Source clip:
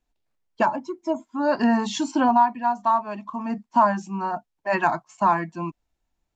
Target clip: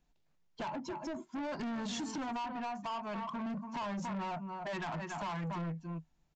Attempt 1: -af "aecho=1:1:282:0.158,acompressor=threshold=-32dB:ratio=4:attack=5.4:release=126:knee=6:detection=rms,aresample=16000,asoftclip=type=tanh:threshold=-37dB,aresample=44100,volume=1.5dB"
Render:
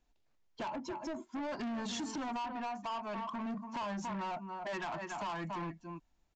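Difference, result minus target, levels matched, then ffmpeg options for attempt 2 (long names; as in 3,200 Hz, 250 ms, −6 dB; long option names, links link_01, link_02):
125 Hz band −5.5 dB
-af "aecho=1:1:282:0.158,acompressor=threshold=-32dB:ratio=4:attack=5.4:release=126:knee=6:detection=rms,equalizer=frequency=160:width=4:gain=13,aresample=16000,asoftclip=type=tanh:threshold=-37dB,aresample=44100,volume=1.5dB"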